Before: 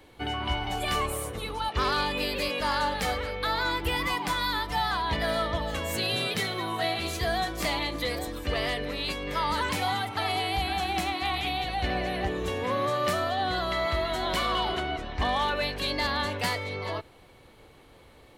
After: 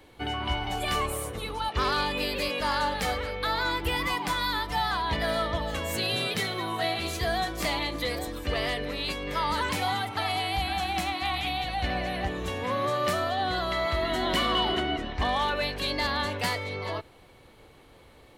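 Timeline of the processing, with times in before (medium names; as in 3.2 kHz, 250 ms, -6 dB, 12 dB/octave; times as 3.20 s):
10.21–12.84 s: peaking EQ 400 Hz -8 dB 0.35 oct
14.02–15.13 s: small resonant body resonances 260/1900/2900 Hz, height 8 dB, ringing for 20 ms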